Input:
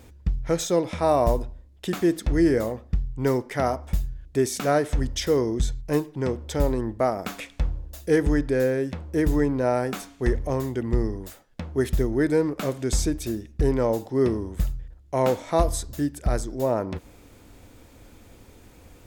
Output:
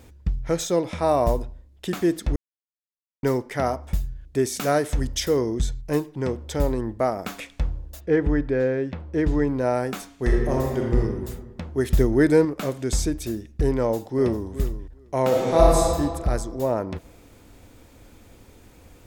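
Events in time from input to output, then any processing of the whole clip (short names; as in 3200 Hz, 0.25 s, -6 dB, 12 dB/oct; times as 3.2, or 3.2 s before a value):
2.36–3.23 mute
4.58–5.27 high shelf 4700 Hz -> 7600 Hz +7.5 dB
7.99–9.46 LPF 2300 Hz -> 4900 Hz
10.16–10.97 reverb throw, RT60 1.5 s, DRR -0.5 dB
11.9–12.45 gain +4.5 dB
13.77–14.47 echo throw 0.4 s, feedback 10%, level -13 dB
15.27–15.88 reverb throw, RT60 1.9 s, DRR -4.5 dB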